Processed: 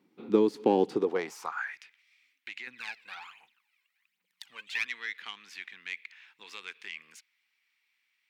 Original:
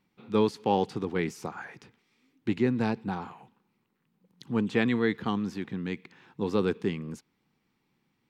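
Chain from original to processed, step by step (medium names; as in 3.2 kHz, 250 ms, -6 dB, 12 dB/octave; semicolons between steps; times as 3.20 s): tracing distortion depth 0.062 ms; bass shelf 250 Hz +11.5 dB; compression 6:1, threshold -22 dBFS, peak gain reduction 8.5 dB; high-pass sweep 320 Hz -> 2.2 kHz, 0.89–1.79 s; 2.67–4.87 s: phaser 1.3 Hz, delay 2 ms, feedback 67%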